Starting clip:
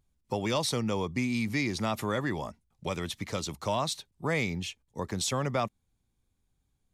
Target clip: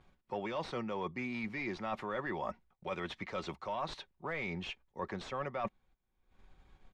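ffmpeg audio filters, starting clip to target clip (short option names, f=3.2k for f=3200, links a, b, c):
-filter_complex "[0:a]aemphasis=mode=production:type=75kf,aecho=1:1:5.4:0.32,acompressor=mode=upward:threshold=-42dB:ratio=2.5,asplit=2[a][b];[b]highpass=f=720:p=1,volume=16dB,asoftclip=type=tanh:threshold=-8.5dB[c];[a][c]amix=inputs=2:normalize=0,lowpass=f=1.4k:p=1,volume=-6dB,agate=range=-15dB:threshold=-59dB:ratio=16:detection=peak,areverse,acompressor=threshold=-35dB:ratio=6,areverse,lowpass=2.4k,asubboost=boost=3:cutoff=71"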